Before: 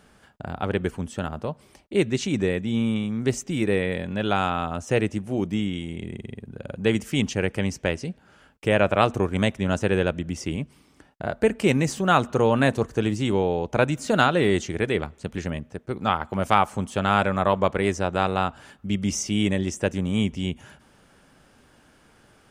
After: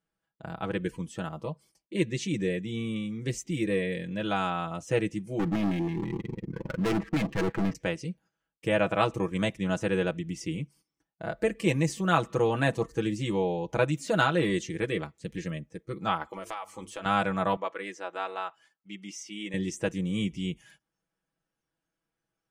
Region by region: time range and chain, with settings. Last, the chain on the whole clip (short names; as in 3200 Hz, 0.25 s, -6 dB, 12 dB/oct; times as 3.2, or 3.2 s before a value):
5.39–7.75 LFO low-pass square 6.2 Hz 350–1600 Hz + sample leveller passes 2 + hard clip -19.5 dBFS
16.32–17.06 bell 160 Hz -12.5 dB 1 oct + notches 50/100/150/200/250/300/350/400/450 Hz + compressor 5:1, threshold -27 dBFS
17.56–19.54 HPF 920 Hz 6 dB/oct + high shelf 3700 Hz -11.5 dB
whole clip: gate -49 dBFS, range -12 dB; spectral noise reduction 13 dB; comb 6.1 ms, depth 73%; gain -7 dB